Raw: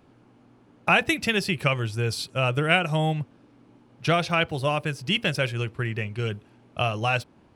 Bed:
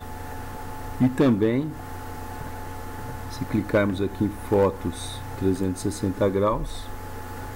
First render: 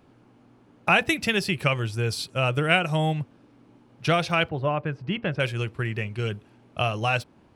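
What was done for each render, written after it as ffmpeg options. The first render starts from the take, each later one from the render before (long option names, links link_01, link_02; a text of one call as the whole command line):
ffmpeg -i in.wav -filter_complex "[0:a]asettb=1/sr,asplit=3[link_01][link_02][link_03];[link_01]atrim=end=4.494[link_04];[link_02]atrim=start=4.49:end=5.4,asetpts=PTS-STARTPTS,afade=type=in:duration=0.004:curve=qsin,afade=type=out:start_time=0.906:duration=0.004:curve=qsin,lowpass=1700[link_05];[link_03]atrim=start=5.396[link_06];[link_04][link_05]acrossfade=duration=0.004:curve1=hsin:curve2=qsin[link_07];[link_07][link_06]acrossfade=duration=0.004:curve1=qsin:curve2=hsin" out.wav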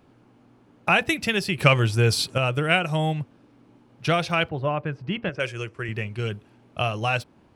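ffmpeg -i in.wav -filter_complex "[0:a]asettb=1/sr,asplit=3[link_01][link_02][link_03];[link_01]atrim=end=1.584[link_04];[link_02]atrim=start=1.58:end=2.38,asetpts=PTS-STARTPTS,afade=type=in:duration=0.004:curve=qsin,afade=type=out:start_time=0.796:duration=0.004:curve=qsin,acontrast=73[link_05];[link_03]atrim=start=2.376[link_06];[link_04][link_05]acrossfade=duration=0.004:curve1=hsin:curve2=qsin[link_07];[link_07][link_06]acrossfade=duration=0.004:curve1=qsin:curve2=hsin,asettb=1/sr,asplit=3[link_08][link_09][link_10];[link_08]atrim=end=5.294[link_11];[link_09]atrim=start=5.29:end=5.89,asetpts=PTS-STARTPTS,afade=type=in:duration=0.004:curve=qsin,afade=type=out:start_time=0.596:duration=0.004:curve=qsin,highpass=130,equalizer=frequency=150:width_type=q:width=4:gain=-9,equalizer=frequency=240:width_type=q:width=4:gain=-8,equalizer=frequency=830:width_type=q:width=4:gain=-6,equalizer=frequency=3900:width_type=q:width=4:gain=-10,equalizer=frequency=6100:width_type=q:width=4:gain=5,lowpass=frequency=9900:width=0.5412,lowpass=frequency=9900:width=1.3066[link_12];[link_10]atrim=start=5.886[link_13];[link_11][link_12]acrossfade=duration=0.004:curve1=hsin:curve2=qsin[link_14];[link_14][link_13]acrossfade=duration=0.004:curve1=qsin:curve2=hsin" out.wav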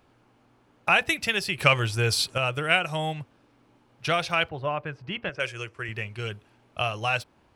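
ffmpeg -i in.wav -af "equalizer=frequency=210:width=0.55:gain=-9" out.wav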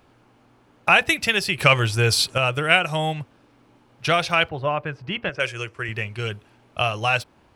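ffmpeg -i in.wav -af "volume=5dB,alimiter=limit=-2dB:level=0:latency=1" out.wav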